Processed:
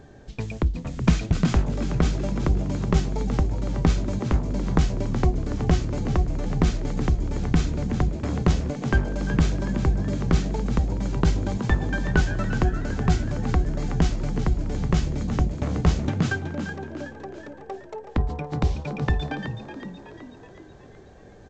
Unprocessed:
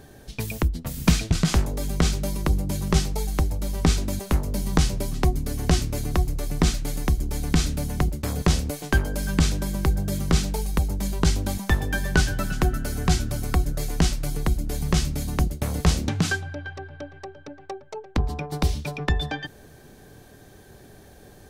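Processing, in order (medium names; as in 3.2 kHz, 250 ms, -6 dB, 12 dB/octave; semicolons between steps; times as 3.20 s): peaking EQ 5.2 kHz -9 dB 2 oct; frequency-shifting echo 373 ms, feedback 52%, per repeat +65 Hz, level -10 dB; G.722 64 kbps 16 kHz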